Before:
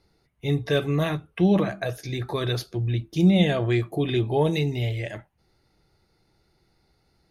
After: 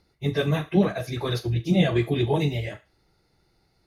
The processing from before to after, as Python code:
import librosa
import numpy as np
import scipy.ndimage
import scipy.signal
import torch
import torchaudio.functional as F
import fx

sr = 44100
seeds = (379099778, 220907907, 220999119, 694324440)

y = fx.echo_thinned(x, sr, ms=69, feedback_pct=45, hz=480.0, wet_db=-10.5)
y = fx.stretch_vocoder_free(y, sr, factor=0.53)
y = y * 10.0 ** (3.0 / 20.0)